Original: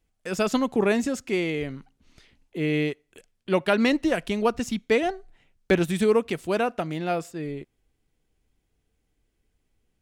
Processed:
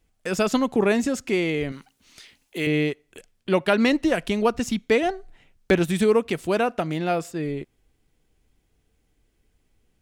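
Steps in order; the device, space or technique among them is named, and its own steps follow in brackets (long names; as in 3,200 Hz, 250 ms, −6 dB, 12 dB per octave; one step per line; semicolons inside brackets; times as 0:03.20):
0:01.72–0:02.67: spectral tilt +3 dB per octave
parallel compression (in parallel at −1 dB: downward compressor, threshold −31 dBFS, peak gain reduction 15 dB)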